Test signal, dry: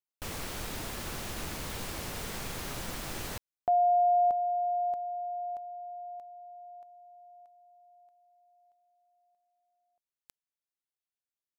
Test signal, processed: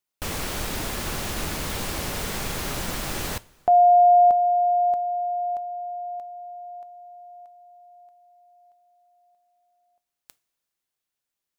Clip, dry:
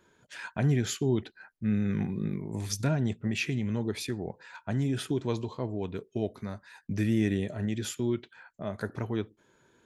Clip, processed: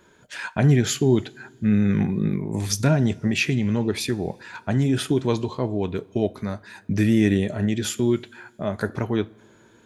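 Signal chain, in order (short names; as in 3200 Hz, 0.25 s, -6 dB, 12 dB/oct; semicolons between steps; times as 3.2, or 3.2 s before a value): two-slope reverb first 0.26 s, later 2.5 s, from -19 dB, DRR 15.5 dB; gain +8.5 dB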